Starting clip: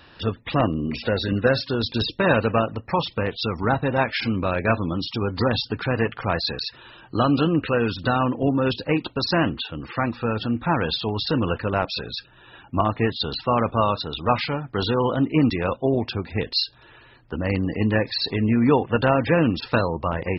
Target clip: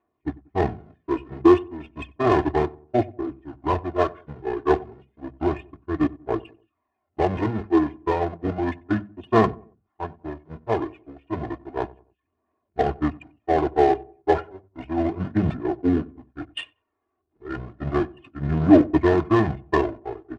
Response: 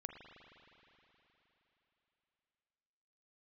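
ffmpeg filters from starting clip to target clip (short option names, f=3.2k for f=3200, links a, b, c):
-filter_complex "[0:a]aeval=exprs='val(0)+0.5*0.1*sgn(val(0))':c=same,agate=range=-47dB:threshold=-17dB:ratio=16:detection=peak,highpass=180,bandreject=f=50:t=h:w=6,bandreject=f=100:t=h:w=6,bandreject=f=150:t=h:w=6,bandreject=f=200:t=h:w=6,bandreject=f=250:t=h:w=6,bandreject=f=300:t=h:w=6,bandreject=f=350:t=h:w=6,aecho=1:1:1.9:0.7,asplit=2[a][b];[b]acrusher=bits=3:mode=log:mix=0:aa=0.000001,volume=-11dB[c];[a][c]amix=inputs=2:normalize=0,aphaser=in_gain=1:out_gain=1:delay=1.8:decay=0.39:speed=0.32:type=triangular,adynamicsmooth=sensitivity=0.5:basefreq=1.8k,asetrate=29433,aresample=44100,atempo=1.49831,asplit=2[d][e];[e]adelay=93,lowpass=f=900:p=1,volume=-20dB,asplit=2[f][g];[g]adelay=93,lowpass=f=900:p=1,volume=0.39,asplit=2[h][i];[i]adelay=93,lowpass=f=900:p=1,volume=0.39[j];[f][h][j]amix=inputs=3:normalize=0[k];[d][k]amix=inputs=2:normalize=0,aresample=22050,aresample=44100,volume=-4dB"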